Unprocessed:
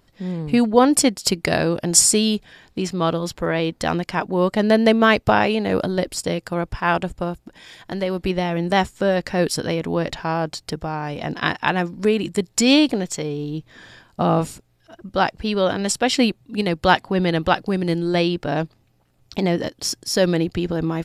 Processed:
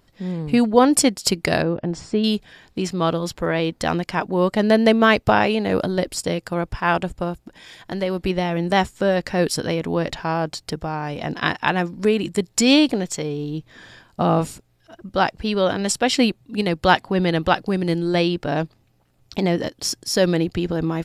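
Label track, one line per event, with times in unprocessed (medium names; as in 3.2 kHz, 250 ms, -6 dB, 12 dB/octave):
1.620000	2.240000	tape spacing loss at 10 kHz 41 dB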